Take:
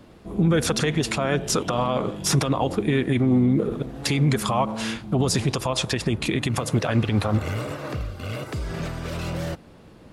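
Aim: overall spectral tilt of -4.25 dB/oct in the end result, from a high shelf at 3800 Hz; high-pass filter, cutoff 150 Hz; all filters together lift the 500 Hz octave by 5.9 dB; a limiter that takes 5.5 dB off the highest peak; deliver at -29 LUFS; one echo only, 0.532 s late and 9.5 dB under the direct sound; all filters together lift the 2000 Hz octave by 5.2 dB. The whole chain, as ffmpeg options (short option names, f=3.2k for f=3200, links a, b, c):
-af "highpass=150,equalizer=f=500:t=o:g=7,equalizer=f=2k:t=o:g=4.5,highshelf=f=3.8k:g=6,alimiter=limit=-11dB:level=0:latency=1,aecho=1:1:532:0.335,volume=-6.5dB"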